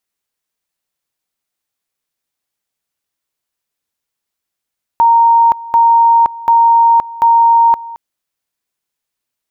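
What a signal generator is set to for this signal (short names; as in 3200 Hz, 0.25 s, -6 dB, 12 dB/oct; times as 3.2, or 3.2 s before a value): two-level tone 927 Hz -5 dBFS, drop 19.5 dB, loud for 0.52 s, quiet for 0.22 s, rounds 4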